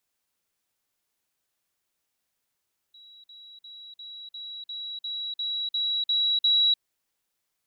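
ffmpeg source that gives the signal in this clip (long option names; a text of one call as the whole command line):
ffmpeg -f lavfi -i "aevalsrc='pow(10,(-48+3*floor(t/0.35))/20)*sin(2*PI*3890*t)*clip(min(mod(t,0.35),0.3-mod(t,0.35))/0.005,0,1)':duration=3.85:sample_rate=44100" out.wav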